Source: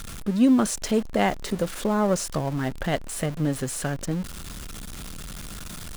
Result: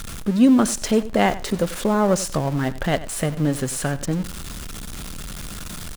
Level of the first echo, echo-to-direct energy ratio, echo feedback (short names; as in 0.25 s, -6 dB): -16.5 dB, -16.5 dB, 16%